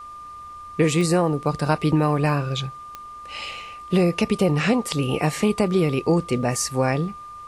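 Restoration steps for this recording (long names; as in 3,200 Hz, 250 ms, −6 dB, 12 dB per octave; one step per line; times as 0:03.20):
click removal
notch filter 1,200 Hz, Q 30
downward expander −31 dBFS, range −21 dB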